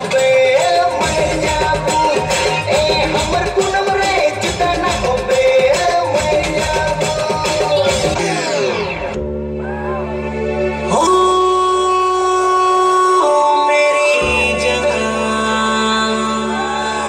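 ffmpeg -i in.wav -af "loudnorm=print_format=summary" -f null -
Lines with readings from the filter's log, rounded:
Input Integrated:    -14.6 LUFS
Input True Peak:      -4.0 dBTP
Input LRA:             3.2 LU
Input Threshold:     -24.6 LUFS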